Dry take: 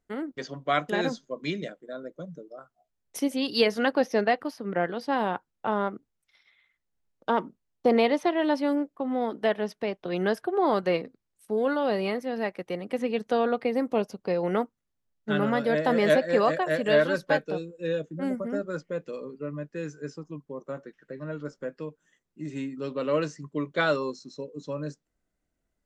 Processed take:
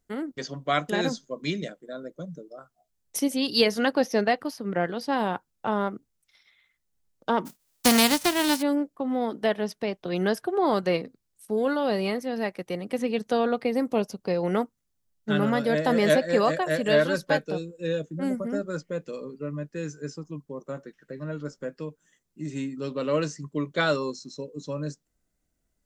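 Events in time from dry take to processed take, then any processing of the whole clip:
0:07.45–0:08.61: spectral envelope flattened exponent 0.3
whole clip: bass and treble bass +4 dB, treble +8 dB

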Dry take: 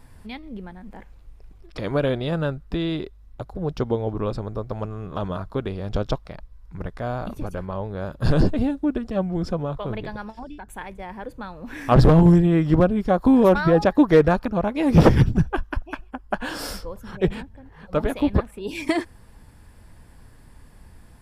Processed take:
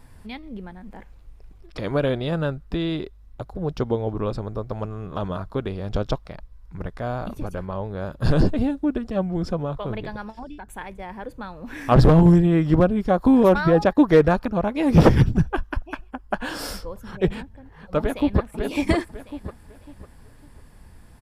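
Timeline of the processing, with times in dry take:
0:13.43–0:13.97: noise gate −28 dBFS, range −10 dB
0:17.99–0:18.53: delay throw 550 ms, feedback 30%, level −3.5 dB

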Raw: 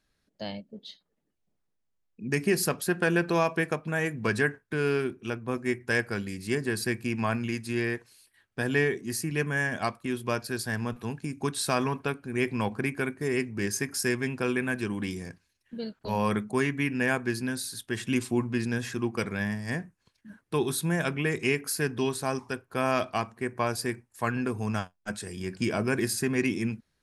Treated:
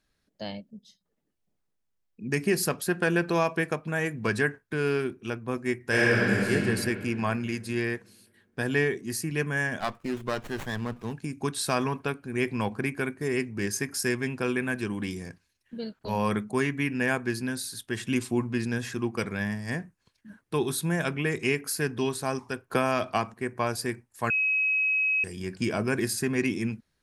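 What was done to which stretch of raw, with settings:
0:00.70–0:01.05: gain on a spectral selection 250–4,900 Hz −14 dB
0:05.81–0:06.51: thrown reverb, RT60 2.7 s, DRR −6.5 dB
0:09.80–0:11.13: windowed peak hold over 9 samples
0:22.70–0:23.34: multiband upward and downward compressor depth 100%
0:24.30–0:25.24: beep over 2,550 Hz −22 dBFS

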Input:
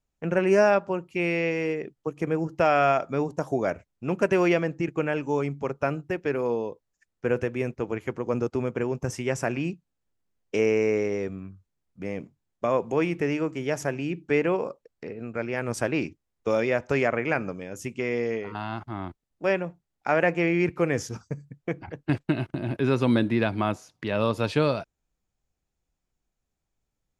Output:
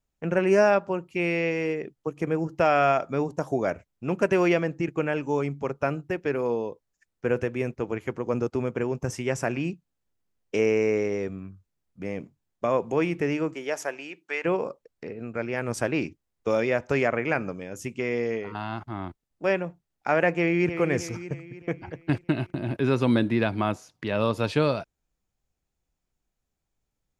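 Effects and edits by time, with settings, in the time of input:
0:13.53–0:14.44: high-pass filter 340 Hz → 980 Hz
0:20.32–0:20.78: delay throw 310 ms, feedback 50%, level −9 dB

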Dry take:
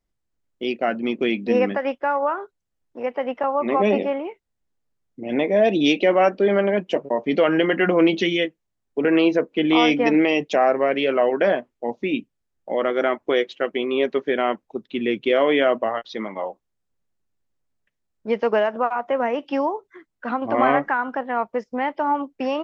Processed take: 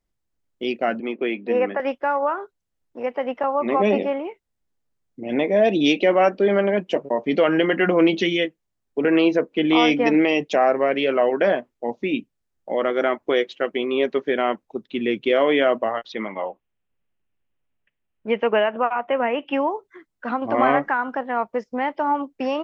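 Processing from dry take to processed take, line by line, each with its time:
0:01.00–0:01.80: three-way crossover with the lows and the highs turned down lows −14 dB, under 280 Hz, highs −23 dB, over 3,100 Hz
0:16.12–0:19.71: high shelf with overshoot 3,700 Hz −9 dB, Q 3

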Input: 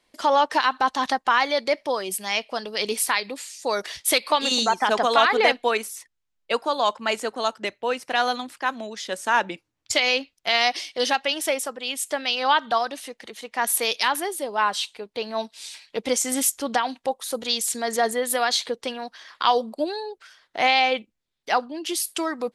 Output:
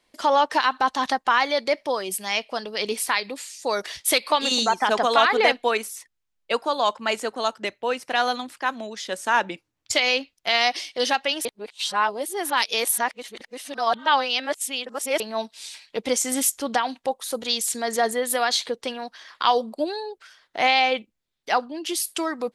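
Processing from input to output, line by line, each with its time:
0:02.64–0:03.12: high-shelf EQ 5,300 Hz −4.5 dB
0:11.45–0:15.20: reverse

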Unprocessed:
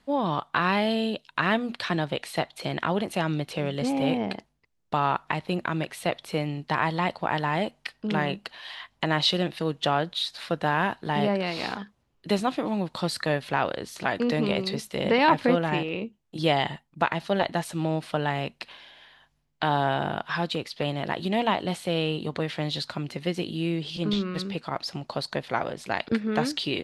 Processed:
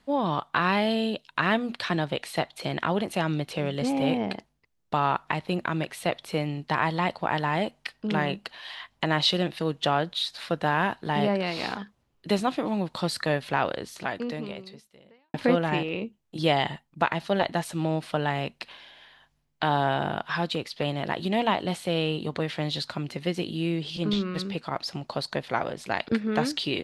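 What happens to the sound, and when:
0:13.76–0:15.34: fade out quadratic

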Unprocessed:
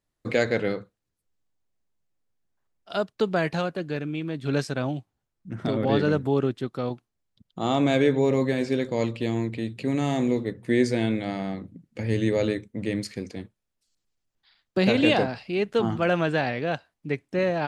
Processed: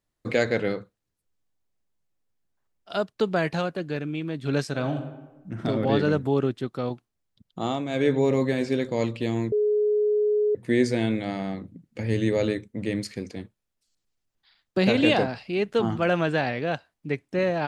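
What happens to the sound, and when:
0:04.69–0:05.67: thrown reverb, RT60 1.1 s, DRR 5.5 dB
0:07.60–0:08.11: duck −11 dB, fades 0.25 s
0:09.52–0:10.55: beep over 420 Hz −19 dBFS

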